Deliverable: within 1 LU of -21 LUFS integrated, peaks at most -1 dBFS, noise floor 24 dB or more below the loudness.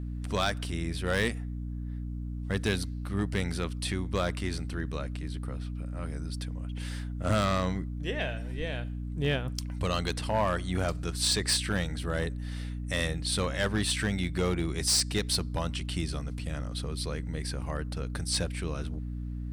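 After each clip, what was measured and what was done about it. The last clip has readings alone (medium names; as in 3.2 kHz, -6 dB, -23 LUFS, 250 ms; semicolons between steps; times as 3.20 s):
clipped samples 0.5%; clipping level -20.0 dBFS; hum 60 Hz; highest harmonic 300 Hz; hum level -33 dBFS; loudness -31.5 LUFS; peak level -20.0 dBFS; loudness target -21.0 LUFS
-> clip repair -20 dBFS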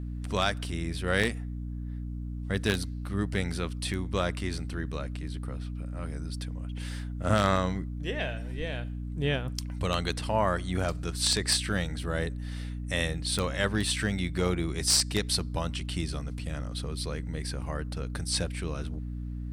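clipped samples 0.0%; hum 60 Hz; highest harmonic 300 Hz; hum level -33 dBFS
-> hum notches 60/120/180/240/300 Hz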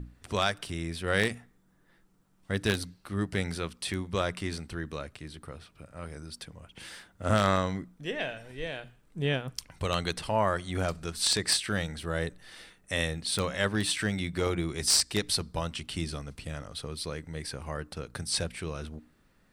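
hum not found; loudness -31.0 LUFS; peak level -10.0 dBFS; loudness target -21.0 LUFS
-> trim +10 dB; peak limiter -1 dBFS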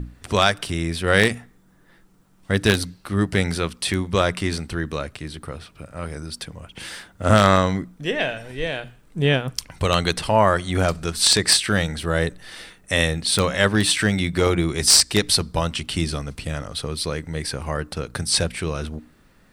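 loudness -21.0 LUFS; peak level -1.0 dBFS; noise floor -55 dBFS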